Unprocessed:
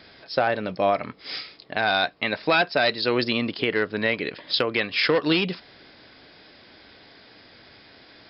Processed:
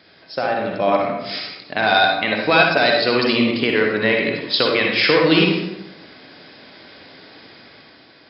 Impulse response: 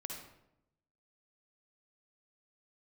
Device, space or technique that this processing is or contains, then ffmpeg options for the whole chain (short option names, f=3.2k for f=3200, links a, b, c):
far laptop microphone: -filter_complex "[1:a]atrim=start_sample=2205[a];[0:a][a]afir=irnorm=-1:irlink=0,highpass=100,dynaudnorm=f=180:g=9:m=7dB,volume=2dB"